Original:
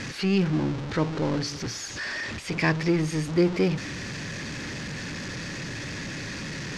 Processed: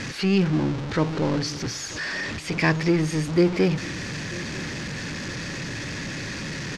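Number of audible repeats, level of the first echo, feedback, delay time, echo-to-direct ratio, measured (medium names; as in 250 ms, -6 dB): 2, -20.0 dB, 44%, 944 ms, -19.0 dB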